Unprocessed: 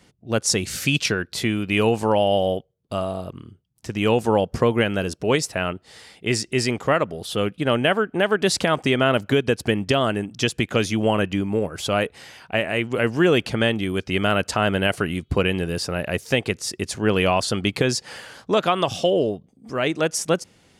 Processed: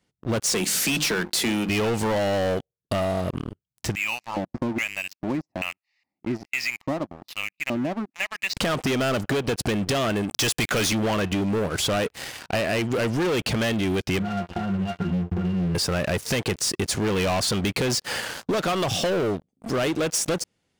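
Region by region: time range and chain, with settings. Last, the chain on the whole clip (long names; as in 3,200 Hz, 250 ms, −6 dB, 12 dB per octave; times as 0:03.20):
0:00.53–0:01.69: Butterworth high-pass 160 Hz 48 dB per octave + high-shelf EQ 6,300 Hz +7 dB + mains-hum notches 50/100/150/200/250/300/350 Hz
0:03.95–0:08.57: auto-filter band-pass square 1.2 Hz 320–2,500 Hz + phaser with its sweep stopped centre 2,200 Hz, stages 8
0:10.29–0:10.93: low-shelf EQ 490 Hz −9 dB + leveller curve on the samples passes 3
0:14.19–0:15.75: hollow resonant body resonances 230/570/800 Hz, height 15 dB, ringing for 35 ms + downward compressor 16 to 1, threshold −14 dBFS + resonances in every octave F, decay 0.24 s
whole clip: leveller curve on the samples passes 5; downward compressor, threshold −15 dBFS; level −7.5 dB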